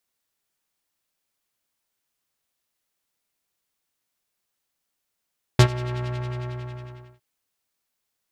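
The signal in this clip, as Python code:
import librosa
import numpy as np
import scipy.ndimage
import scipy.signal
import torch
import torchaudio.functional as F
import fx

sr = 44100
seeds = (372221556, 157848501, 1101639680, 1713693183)

y = fx.sub_patch_wobble(sr, seeds[0], note=47, wave='square', wave2='saw', interval_st=0, level2_db=-10.5, sub_db=-15.0, noise_db=-7.0, kind='lowpass', cutoff_hz=1800.0, q=1.0, env_oct=1.0, env_decay_s=0.27, env_sustain_pct=40, attack_ms=4.6, decay_s=0.08, sustain_db=-19.5, release_s=1.22, note_s=0.39, lfo_hz=11.0, wobble_oct=0.8)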